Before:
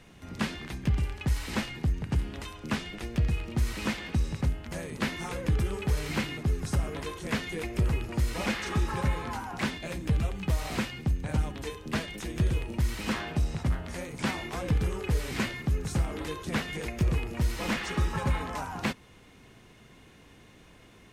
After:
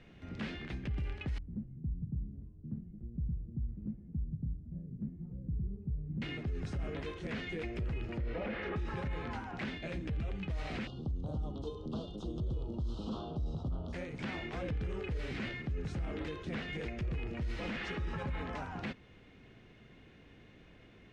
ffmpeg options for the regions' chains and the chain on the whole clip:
ffmpeg -i in.wav -filter_complex "[0:a]asettb=1/sr,asplit=3[link_01][link_02][link_03];[link_01]atrim=end=1.384[link_04];[link_02]atrim=start=1.38:end=6.22,asetpts=PTS-STARTPTS,afade=type=in:duration=0.004:curve=qsin,afade=type=out:start_time=4.836:duration=0.004:curve=qsin,flanger=delay=4.7:depth=2.5:regen=-83:speed=1.1:shape=sinusoidal,lowpass=frequency=170:width_type=q:width=1.7[link_05];[link_03]atrim=start=6.216[link_06];[link_04][link_05]acrossfade=duration=0.004:curve1=hsin:curve2=qsin[link_07];[link_07][link_06]acrossfade=duration=0.004:curve1=qsin:curve2=hsin,asettb=1/sr,asplit=3[link_08][link_09][link_10];[link_08]atrim=end=8.184[link_11];[link_09]atrim=start=8.18:end=8.76,asetpts=PTS-STARTPTS,afade=type=in:duration=0.004:curve=qsin,afade=type=out:start_time=0.576:duration=0.004:curve=qsin,lowpass=2400,equalizer=frequency=510:width=1.8:gain=8[link_12];[link_10]atrim=start=8.756[link_13];[link_11][link_12]acrossfade=duration=0.004:curve1=hsin:curve2=qsin[link_14];[link_14][link_13]acrossfade=duration=0.004:curve1=qsin:curve2=hsin,asettb=1/sr,asplit=3[link_15][link_16][link_17];[link_15]atrim=end=10.874[link_18];[link_16]atrim=start=10.87:end=13.93,asetpts=PTS-STARTPTS,afade=type=in:duration=0.004:curve=qsin,afade=type=out:start_time=3.056:duration=0.004:curve=qsin,highshelf=frequency=7700:gain=-10,acompressor=mode=upward:threshold=-33dB:ratio=2.5:attack=3.2:release=140:knee=2.83:detection=peak,asuperstop=centerf=2000:order=8:qfactor=1[link_19];[link_17]atrim=start=13.926[link_20];[link_18][link_19]acrossfade=duration=0.004:curve1=hsin:curve2=qsin[link_21];[link_21][link_20]acrossfade=duration=0.004:curve1=qsin:curve2=hsin,lowpass=3100,equalizer=frequency=1000:width=1.9:gain=-7,alimiter=level_in=3.5dB:limit=-24dB:level=0:latency=1:release=33,volume=-3.5dB,volume=-2.5dB" out.wav

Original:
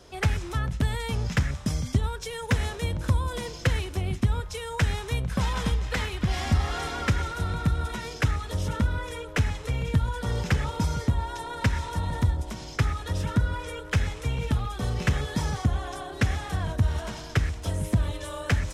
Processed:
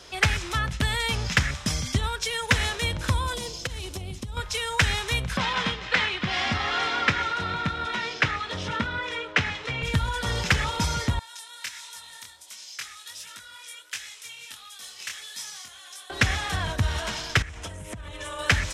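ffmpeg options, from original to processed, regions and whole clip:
ffmpeg -i in.wav -filter_complex "[0:a]asettb=1/sr,asplit=3[link_01][link_02][link_03];[link_01]atrim=end=3.344[link_04];[link_02]atrim=start=3.34:end=4.37,asetpts=PTS-STARTPTS,afade=type=in:duration=0.004:curve=qsin,afade=type=out:start_time=1.026:duration=0.004:curve=qsin,equalizer=frequency=1800:width_type=o:width=1.6:gain=-12.5,acompressor=threshold=-29dB:ratio=10:attack=3.2:release=140:knee=1:detection=peak[link_05];[link_03]atrim=start=4.366[link_06];[link_04][link_05]acrossfade=duration=0.004:curve1=hsin:curve2=qsin[link_07];[link_07][link_06]acrossfade=duration=0.004:curve1=qsin:curve2=hsin,asettb=1/sr,asplit=3[link_08][link_09][link_10];[link_08]atrim=end=5.374[link_11];[link_09]atrim=start=5.37:end=9.83,asetpts=PTS-STARTPTS,afade=type=in:duration=0.004:curve=qsin,afade=type=out:start_time=4.456:duration=0.004:curve=qsin,highpass=140,lowpass=3900,asplit=2[link_12][link_13];[link_13]adelay=22,volume=-11.5dB[link_14];[link_12][link_14]amix=inputs=2:normalize=0,atrim=end_sample=196686[link_15];[link_10]atrim=start=9.826[link_16];[link_11][link_15]acrossfade=duration=0.004:curve1=hsin:curve2=qsin[link_17];[link_17][link_16]acrossfade=duration=0.004:curve1=qsin:curve2=hsin,asettb=1/sr,asplit=3[link_18][link_19][link_20];[link_18]atrim=end=11.194[link_21];[link_19]atrim=start=11.19:end=16.1,asetpts=PTS-STARTPTS,afade=type=in:duration=0.004:curve=qsin,afade=type=out:start_time=4.906:duration=0.004:curve=qsin,aderivative,flanger=delay=19.5:depth=5.8:speed=1.4[link_22];[link_20]atrim=start=16.096[link_23];[link_21][link_22]acrossfade=duration=0.004:curve1=hsin:curve2=qsin[link_24];[link_24][link_23]acrossfade=duration=0.004:curve1=qsin:curve2=hsin,asettb=1/sr,asplit=3[link_25][link_26][link_27];[link_25]atrim=end=17.424[link_28];[link_26]atrim=start=17.42:end=18.39,asetpts=PTS-STARTPTS,afade=type=in:duration=0.004:curve=qsin,afade=type=out:start_time=0.966:duration=0.004:curve=qsin,lowpass=9700,equalizer=frequency=4400:width=1.8:gain=-9.5,acompressor=threshold=-34dB:ratio=8:attack=3.2:release=140:knee=1:detection=peak[link_29];[link_27]atrim=start=18.386[link_30];[link_28][link_29]acrossfade=duration=0.004:curve1=hsin:curve2=qsin[link_31];[link_31][link_30]acrossfade=duration=0.004:curve1=qsin:curve2=hsin,lowpass=frequency=2800:poles=1,tiltshelf=frequency=1300:gain=-9.5,volume=7.5dB" out.wav

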